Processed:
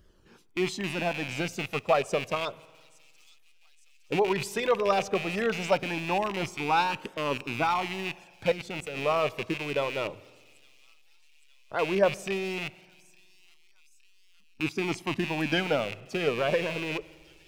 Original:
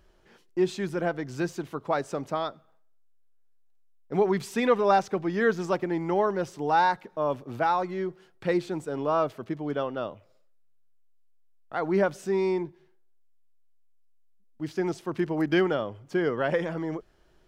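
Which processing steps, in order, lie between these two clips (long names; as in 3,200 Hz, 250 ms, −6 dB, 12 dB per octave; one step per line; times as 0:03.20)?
loose part that buzzes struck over −42 dBFS, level −22 dBFS
delay with a high-pass on its return 863 ms, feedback 61%, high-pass 4,600 Hz, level −15.5 dB
on a send at −18 dB: convolution reverb RT60 1.6 s, pre-delay 51 ms
on the sum: flanger 0.14 Hz, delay 0.6 ms, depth 1.9 ms, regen −30%
parametric band 1,600 Hz −5.5 dB 1.5 octaves
0:08.50–0:08.97: output level in coarse steps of 10 dB
harmonic and percussive parts rebalanced percussive +9 dB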